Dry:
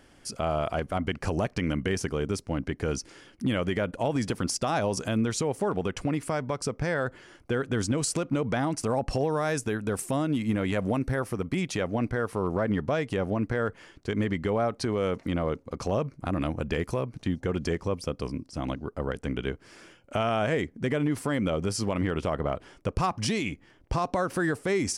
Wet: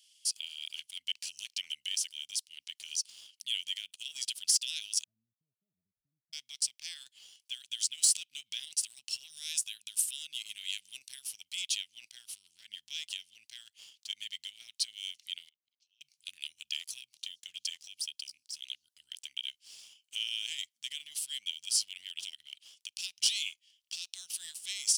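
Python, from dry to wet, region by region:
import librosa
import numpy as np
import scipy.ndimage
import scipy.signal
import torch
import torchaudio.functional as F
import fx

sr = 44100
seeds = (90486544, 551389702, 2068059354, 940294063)

y = fx.chain(x, sr, fx.cheby_ripple(hz=670.0, ripple_db=9),
    fx.peak_eq(hz=90.0, db=5.5, octaves=2.2), at=(5.04, 6.33))
y = fx.chain(y, sr, fx.gate_flip(shuts_db=-32.0, range_db=-24),
    fx.lowpass(hz=3800.0, slope=12), at=(15.49, 16.01))
y = scipy.signal.sosfilt(scipy.signal.ellip(4, 1.0, 60, 3000.0, 'highpass', fs=sr, output='sos'), y)
y = fx.dynamic_eq(y, sr, hz=6200.0, q=2.0, threshold_db=-49.0, ratio=4.0, max_db=-4)
y = fx.leveller(y, sr, passes=1)
y = y * 10.0 ** (4.5 / 20.0)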